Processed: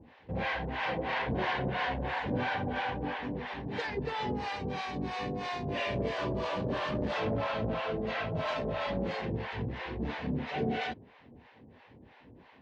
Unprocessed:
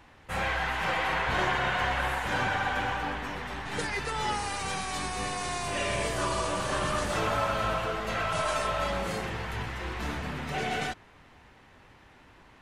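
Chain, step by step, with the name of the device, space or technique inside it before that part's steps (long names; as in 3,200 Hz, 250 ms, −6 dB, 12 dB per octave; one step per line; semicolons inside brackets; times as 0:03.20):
spectral tilt −1.5 dB per octave
guitar amplifier with harmonic tremolo (two-band tremolo in antiphase 3 Hz, depth 100%, crossover 590 Hz; soft clipping −27 dBFS, distortion −17 dB; loudspeaker in its box 96–4,500 Hz, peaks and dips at 240 Hz +6 dB, 470 Hz +5 dB, 1,300 Hz −9 dB)
level +3 dB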